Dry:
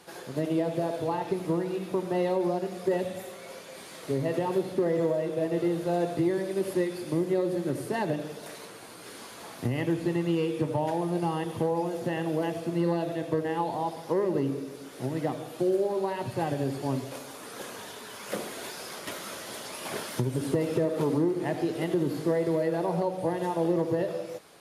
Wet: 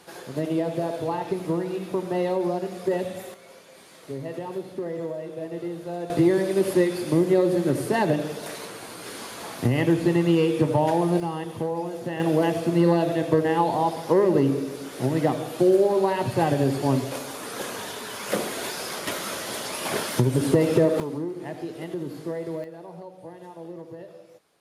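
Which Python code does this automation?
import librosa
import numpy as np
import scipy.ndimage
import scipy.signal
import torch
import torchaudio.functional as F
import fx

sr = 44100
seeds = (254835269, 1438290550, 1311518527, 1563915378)

y = fx.gain(x, sr, db=fx.steps((0.0, 2.0), (3.34, -5.0), (6.1, 7.0), (11.2, -0.5), (12.2, 7.5), (21.0, -5.0), (22.64, -13.0)))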